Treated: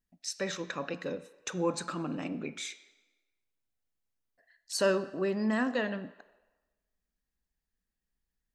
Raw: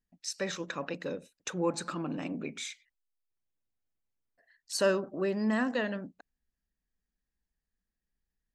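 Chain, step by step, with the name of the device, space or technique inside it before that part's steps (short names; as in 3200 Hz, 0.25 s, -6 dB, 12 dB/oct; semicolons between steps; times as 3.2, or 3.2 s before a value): filtered reverb send (on a send: HPF 460 Hz 12 dB/oct + LPF 6400 Hz 12 dB/oct + reverb RT60 1.2 s, pre-delay 3 ms, DRR 12.5 dB)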